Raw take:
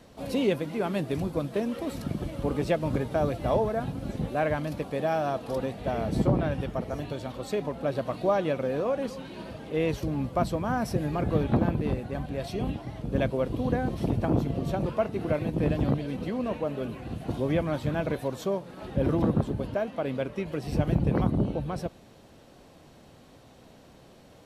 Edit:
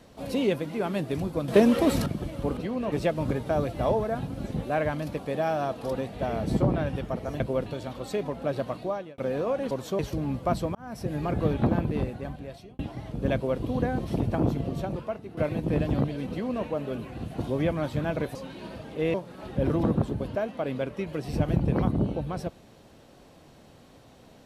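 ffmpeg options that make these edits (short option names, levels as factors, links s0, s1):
-filter_complex "[0:a]asplit=15[s0][s1][s2][s3][s4][s5][s6][s7][s8][s9][s10][s11][s12][s13][s14];[s0]atrim=end=1.482[s15];[s1]atrim=start=1.478:end=2.062,asetpts=PTS-STARTPTS,volume=3.35[s16];[s2]atrim=start=2.058:end=2.572[s17];[s3]atrim=start=16.198:end=16.552[s18];[s4]atrim=start=2.568:end=7.052[s19];[s5]atrim=start=13.238:end=13.502[s20];[s6]atrim=start=7.048:end=8.57,asetpts=PTS-STARTPTS,afade=t=out:st=0.982:d=0.54[s21];[s7]atrim=start=8.57:end=9.102,asetpts=PTS-STARTPTS,afade=t=in:d=0.004:c=hsin[s22];[s8]atrim=start=18.248:end=18.532[s23];[s9]atrim=start=9.888:end=10.65,asetpts=PTS-STARTPTS,afade=t=out:st=0.758:d=0.004:c=hsin[s24];[s10]atrim=start=10.65:end=12.69,asetpts=PTS-STARTPTS,afade=t=in:d=0.47,afade=t=out:st=1.31:d=0.73[s25];[s11]atrim=start=12.69:end=15.27,asetpts=PTS-STARTPTS,afade=t=in:d=0.004:c=hsin,afade=t=out:st=1.8:d=0.78:silence=0.223872[s26];[s12]atrim=start=15.27:end=18.252,asetpts=PTS-STARTPTS,afade=t=in:d=0.004:c=hsin:silence=0.223872[s27];[s13]atrim=start=9.098:end=9.892[s28];[s14]atrim=start=18.528[s29];[s15][s16]acrossfade=d=0.004:c1=hsin:c2=hsin[s30];[s30][s17]acrossfade=d=0.004:c1=hsin:c2=hsin[s31];[s31][s18]acrossfade=d=0.004:c1=hsin:c2=hsin[s32];[s32][s19]acrossfade=d=0.004:c1=hsin:c2=hsin[s33];[s33][s20]acrossfade=d=0.004:c1=hsin:c2=hsin[s34];[s21][s22]concat=n=2:v=0:a=1[s35];[s34][s35]acrossfade=d=0.004:c1=hsin:c2=hsin[s36];[s36][s23]acrossfade=d=0.004:c1=hsin:c2=hsin[s37];[s24][s25][s26][s27]concat=n=4:v=0:a=1[s38];[s37][s38]acrossfade=d=0.004:c1=hsin:c2=hsin[s39];[s39][s28]acrossfade=d=0.004:c1=hsin:c2=hsin[s40];[s40][s29]acrossfade=d=0.004:c1=hsin:c2=hsin"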